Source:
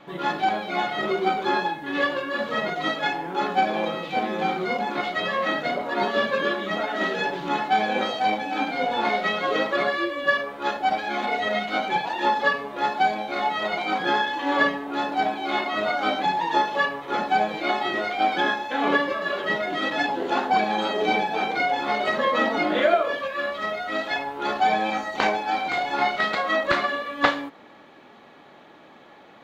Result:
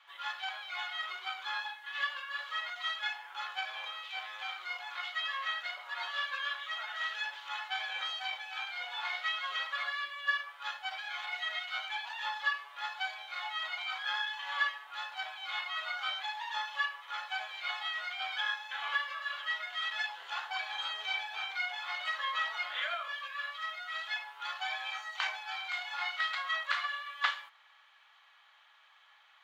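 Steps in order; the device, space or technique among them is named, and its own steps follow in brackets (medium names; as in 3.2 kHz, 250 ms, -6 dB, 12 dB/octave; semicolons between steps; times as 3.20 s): headphones lying on a table (high-pass 1.1 kHz 24 dB/octave; peaking EQ 3.1 kHz +6 dB 0.23 oct); trim -8.5 dB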